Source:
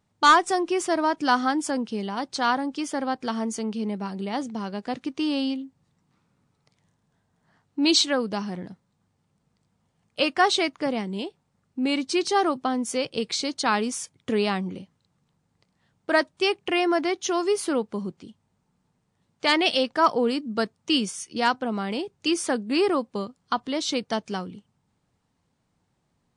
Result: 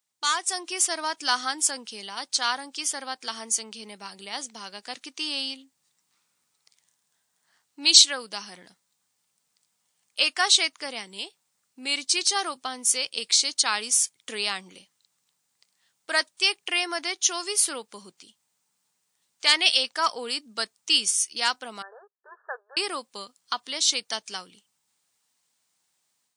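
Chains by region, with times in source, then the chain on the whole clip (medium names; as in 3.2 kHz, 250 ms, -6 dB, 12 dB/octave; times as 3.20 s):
21.82–22.77 s: power-law waveshaper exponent 1.4 + brick-wall FIR band-pass 380–1800 Hz
whole clip: differentiator; level rider gain up to 8.5 dB; trim +3 dB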